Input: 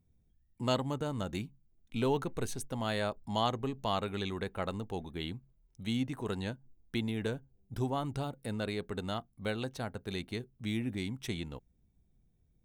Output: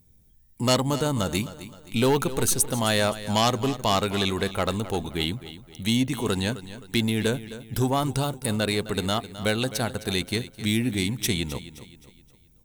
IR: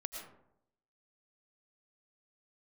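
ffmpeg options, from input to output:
-filter_complex "[0:a]acontrast=76,aeval=exprs='0.335*sin(PI/2*1.78*val(0)/0.335)':c=same,crystalizer=i=2.5:c=0,asplit=2[s0][s1];[s1]aecho=0:1:261|522|783|1044:0.188|0.0772|0.0317|0.013[s2];[s0][s2]amix=inputs=2:normalize=0,volume=0.531"

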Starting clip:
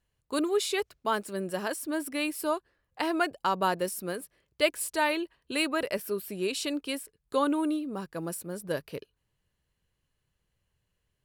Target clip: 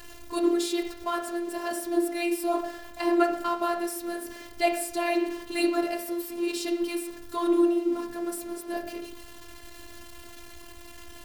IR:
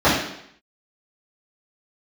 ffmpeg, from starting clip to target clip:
-filter_complex "[0:a]aeval=exprs='val(0)+0.5*0.015*sgn(val(0))':c=same,asplit=2[s0][s1];[1:a]atrim=start_sample=2205[s2];[s1][s2]afir=irnorm=-1:irlink=0,volume=0.0447[s3];[s0][s3]amix=inputs=2:normalize=0,afftfilt=real='hypot(re,im)*cos(PI*b)':imag='0':win_size=512:overlap=0.75"

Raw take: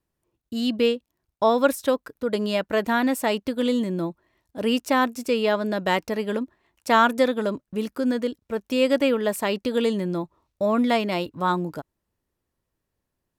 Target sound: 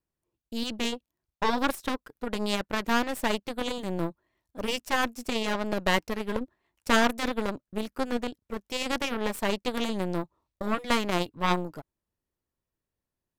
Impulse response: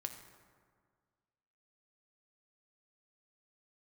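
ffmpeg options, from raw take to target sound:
-af "afftfilt=real='re*lt(hypot(re,im),0.794)':imag='im*lt(hypot(re,im),0.794)':win_size=1024:overlap=0.75,aeval=exprs='0.355*(cos(1*acos(clip(val(0)/0.355,-1,1)))-cos(1*PI/2))+0.02*(cos(3*acos(clip(val(0)/0.355,-1,1)))-cos(3*PI/2))+0.0794*(cos(4*acos(clip(val(0)/0.355,-1,1)))-cos(4*PI/2))+0.0224*(cos(7*acos(clip(val(0)/0.355,-1,1)))-cos(7*PI/2))':c=same"

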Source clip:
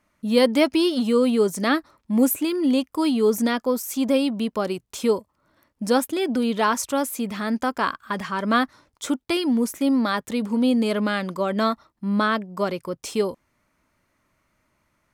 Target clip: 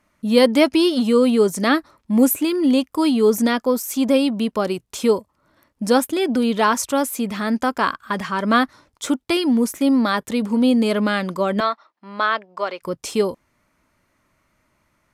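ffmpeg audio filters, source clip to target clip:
-filter_complex "[0:a]asettb=1/sr,asplit=3[s0][s1][s2];[s0]atrim=end=11.604[s3];[s1]atrim=start=11.6:end=12.82,asetpts=PTS-STARTPTS,afade=t=in:d=0.004:c=qsin,afade=t=out:st=1.216:d=0.004:c=qsin,highpass=620,lowpass=4200[s4];[s2]atrim=start=12.816[s5];[s3][s4]acrossfade=d=0.004:c1=hsin:c2=qsin[s6];[s6][s5]acrossfade=d=0.004:c1=qsin:c2=hsin,volume=1.5" -ar 32000 -c:a libvorbis -b:a 128k

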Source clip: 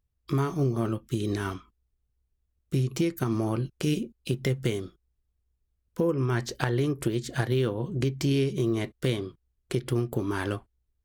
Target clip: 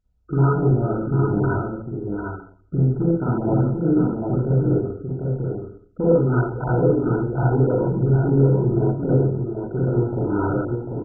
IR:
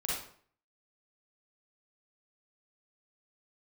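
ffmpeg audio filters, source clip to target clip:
-filter_complex "[0:a]asettb=1/sr,asplit=3[s0][s1][s2];[s0]atrim=end=2.904[s3];[s1]atrim=start=2.9:end=6.08,asetpts=PTS-STARTPTS,afade=t=in:d=0.004:c=qsin,afade=t=out:st=3.176:d=0.004:c=qsin,lowpass=f=3700:w=0.5412,lowpass=f=3700:w=1.3066[s4];[s2]atrim=start=6.076[s5];[s3][s4]acrossfade=d=0.004:c1=hsin:c2=qsin[s6];[s6][s5]acrossfade=d=0.004:c1=qsin:c2=hsin,aeval=exprs='(tanh(5.01*val(0)+0.05)-tanh(0.05))/5.01':c=same,aecho=1:1:745:0.562[s7];[1:a]atrim=start_sample=2205[s8];[s7][s8]afir=irnorm=-1:irlink=0,volume=1.58" -ar 16000 -c:a mp2 -b:a 8k

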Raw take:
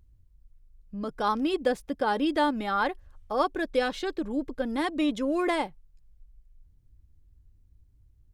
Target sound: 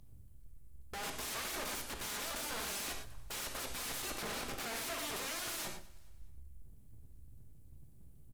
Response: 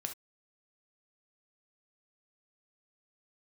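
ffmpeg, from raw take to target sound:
-filter_complex "[0:a]acrossover=split=150|2500[s0][s1][s2];[s2]aexciter=amount=3:drive=7.9:freq=7700[s3];[s0][s1][s3]amix=inputs=3:normalize=0,equalizer=f=100:t=o:w=1.2:g=3,aeval=exprs='abs(val(0))':c=same,aeval=exprs='(tanh(10*val(0)+0.5)-tanh(0.5))/10':c=same,bandreject=f=60:t=h:w=6,bandreject=f=120:t=h:w=6,bandreject=f=180:t=h:w=6,bandreject=f=240:t=h:w=6,aeval=exprs='(mod(112*val(0)+1,2)-1)/112':c=same,aecho=1:1:209|418|627:0.0794|0.0326|0.0134[s4];[1:a]atrim=start_sample=2205,asetrate=26460,aresample=44100[s5];[s4][s5]afir=irnorm=-1:irlink=0,volume=1.5"

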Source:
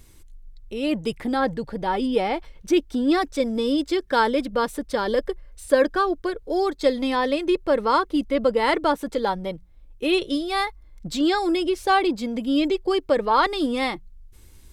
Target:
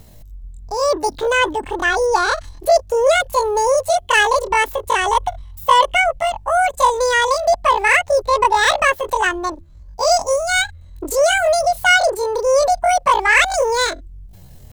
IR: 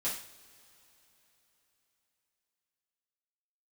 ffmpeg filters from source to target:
-af "acontrast=86,asetrate=83250,aresample=44100,atempo=0.529732"

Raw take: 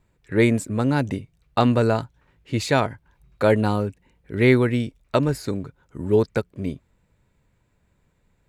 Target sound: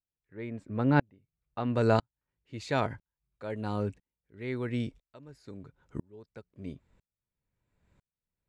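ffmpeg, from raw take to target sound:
-af "asetnsamples=n=441:p=0,asendcmd='1.75 lowpass f 7400',lowpass=2700,aeval=exprs='val(0)*pow(10,-39*if(lt(mod(-1*n/s,1),2*abs(-1)/1000),1-mod(-1*n/s,1)/(2*abs(-1)/1000),(mod(-1*n/s,1)-2*abs(-1)/1000)/(1-2*abs(-1)/1000))/20)':c=same"

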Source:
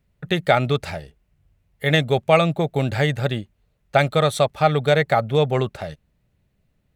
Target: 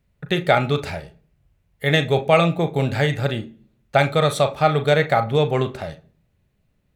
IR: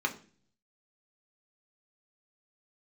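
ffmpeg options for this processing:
-filter_complex "[0:a]asplit=2[s0][s1];[1:a]atrim=start_sample=2205,adelay=35[s2];[s1][s2]afir=irnorm=-1:irlink=0,volume=0.178[s3];[s0][s3]amix=inputs=2:normalize=0"

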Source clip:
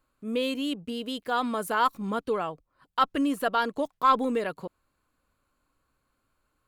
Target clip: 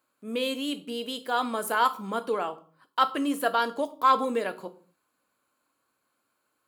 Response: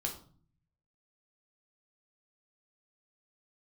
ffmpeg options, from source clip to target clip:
-filter_complex "[0:a]highpass=260,asplit=2[s0][s1];[s1]highshelf=f=5400:g=10.5[s2];[1:a]atrim=start_sample=2205,afade=t=out:st=0.34:d=0.01,atrim=end_sample=15435[s3];[s2][s3]afir=irnorm=-1:irlink=0,volume=0.473[s4];[s0][s4]amix=inputs=2:normalize=0,volume=0.75"

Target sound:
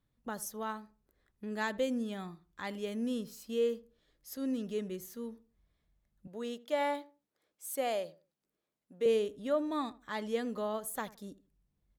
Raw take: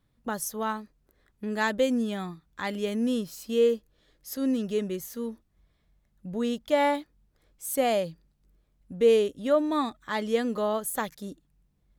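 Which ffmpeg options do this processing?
-filter_complex "[0:a]asettb=1/sr,asplit=3[s0][s1][s2];[s0]atrim=end=6.274[s3];[s1]atrim=start=6.27:end=9.06,asetpts=PTS-STARTPTS,afade=t=in:d=0.004:c=qsin,afade=t=out:st=2.786:d=0.004:c=qsin,highpass=310[s4];[s2]atrim=start=9.056[s5];[s3][s4]acrossfade=d=0.004:c1=hsin:c2=qsin[s6];[s6][s5]acrossfade=d=0.004:c1=qsin:c2=hsin,asplit=2[s7][s8];[s8]adelay=80,lowpass=f=1100:p=1,volume=0.141,asplit=2[s9][s10];[s10]adelay=80,lowpass=f=1100:p=1,volume=0.27,asplit=2[s11][s12];[s12]adelay=80,lowpass=f=1100:p=1,volume=0.27[s13];[s7][s9][s11][s13]amix=inputs=4:normalize=0,volume=0.398"

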